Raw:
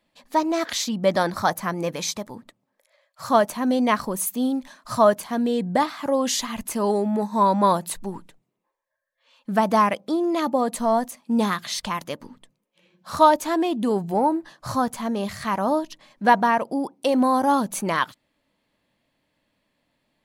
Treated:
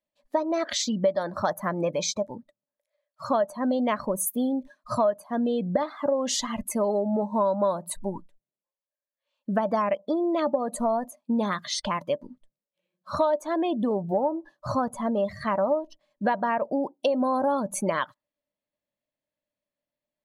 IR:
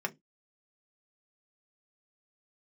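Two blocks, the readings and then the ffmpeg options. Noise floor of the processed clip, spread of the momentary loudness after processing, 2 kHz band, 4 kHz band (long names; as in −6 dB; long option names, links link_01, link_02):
below −85 dBFS, 7 LU, −7.0 dB, −4.0 dB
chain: -af "afftdn=noise_reduction=22:noise_floor=-35,equalizer=frequency=590:width_type=o:width=0.2:gain=13.5,acompressor=threshold=-22dB:ratio=5"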